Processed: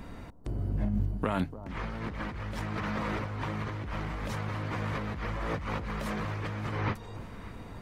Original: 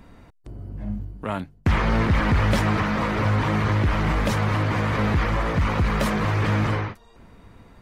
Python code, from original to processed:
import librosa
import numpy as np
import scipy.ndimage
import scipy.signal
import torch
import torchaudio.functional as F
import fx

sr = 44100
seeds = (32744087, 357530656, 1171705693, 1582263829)

p1 = fx.over_compress(x, sr, threshold_db=-30.0, ratio=-1.0)
p2 = p1 + fx.echo_alternate(p1, sr, ms=293, hz=980.0, feedback_pct=66, wet_db=-14, dry=0)
y = p2 * librosa.db_to_amplitude(-3.5)